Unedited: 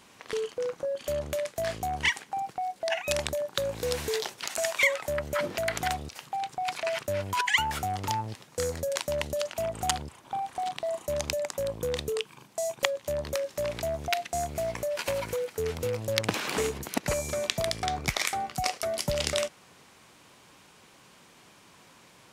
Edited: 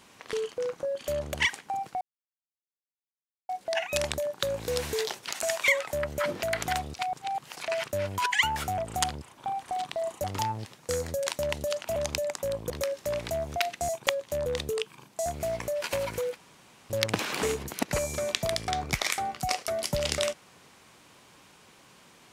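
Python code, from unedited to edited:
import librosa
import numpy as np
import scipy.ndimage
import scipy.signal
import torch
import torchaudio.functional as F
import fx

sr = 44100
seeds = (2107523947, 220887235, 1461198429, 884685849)

y = fx.edit(x, sr, fx.cut(start_s=1.34, length_s=0.63),
    fx.insert_silence(at_s=2.64, length_s=1.48),
    fx.reverse_span(start_s=6.14, length_s=0.58),
    fx.move(start_s=9.65, length_s=1.46, to_s=7.93),
    fx.swap(start_s=11.85, length_s=0.8, other_s=13.22, other_length_s=1.19),
    fx.room_tone_fill(start_s=15.51, length_s=0.54), tone=tone)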